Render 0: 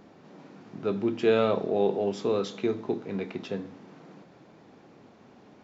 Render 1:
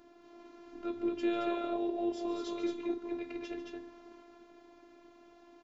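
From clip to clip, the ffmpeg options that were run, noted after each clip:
-filter_complex "[0:a]aecho=1:1:145.8|221.6:0.251|0.631,asplit=2[a][b];[b]acompressor=threshold=-32dB:ratio=6,volume=1dB[c];[a][c]amix=inputs=2:normalize=0,afftfilt=real='hypot(re,im)*cos(PI*b)':imag='0':win_size=512:overlap=0.75,volume=-8.5dB"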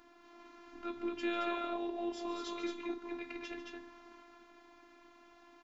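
-af "equalizer=f=125:t=o:w=1:g=-12,equalizer=f=500:t=o:w=1:g=-11,equalizer=f=1k:t=o:w=1:g=4,equalizer=f=2k:t=o:w=1:g=3,volume=1dB"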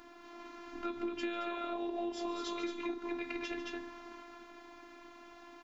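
-af "acompressor=threshold=-40dB:ratio=10,volume=6.5dB"

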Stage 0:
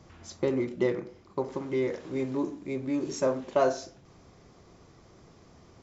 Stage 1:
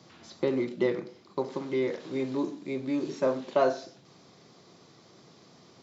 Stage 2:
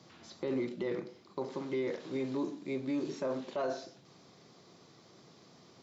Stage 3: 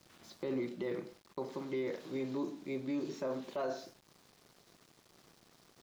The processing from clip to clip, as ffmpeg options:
-filter_complex "[0:a]highpass=f=130:w=0.5412,highpass=f=130:w=1.3066,acrossover=split=3100[a][b];[b]acompressor=threshold=-57dB:ratio=4:attack=1:release=60[c];[a][c]amix=inputs=2:normalize=0,equalizer=f=4.1k:w=1.6:g=9.5"
-af "alimiter=limit=-23.5dB:level=0:latency=1:release=17,volume=-3dB"
-af "aeval=exprs='val(0)*gte(abs(val(0)),0.00178)':c=same,volume=-2.5dB"

